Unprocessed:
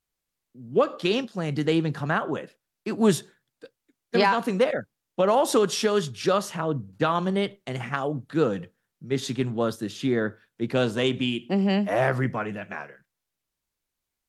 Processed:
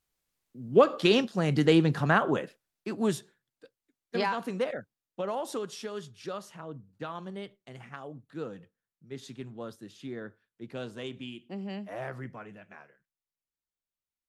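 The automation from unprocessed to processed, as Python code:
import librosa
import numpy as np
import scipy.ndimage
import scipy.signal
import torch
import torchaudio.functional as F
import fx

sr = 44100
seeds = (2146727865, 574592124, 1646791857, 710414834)

y = fx.gain(x, sr, db=fx.line((2.41, 1.5), (3.12, -8.5), (4.74, -8.5), (5.77, -15.0)))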